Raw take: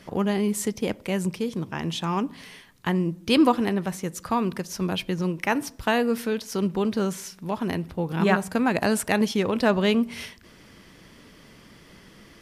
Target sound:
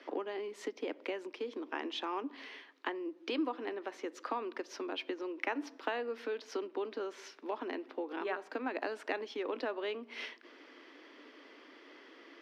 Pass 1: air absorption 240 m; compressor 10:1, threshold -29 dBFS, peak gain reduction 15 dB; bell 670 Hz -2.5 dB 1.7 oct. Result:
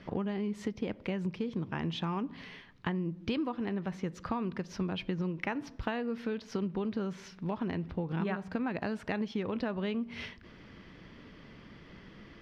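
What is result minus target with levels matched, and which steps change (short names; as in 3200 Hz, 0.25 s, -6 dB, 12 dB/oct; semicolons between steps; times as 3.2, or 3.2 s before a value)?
250 Hz band +4.5 dB
add after compressor: steep high-pass 270 Hz 72 dB/oct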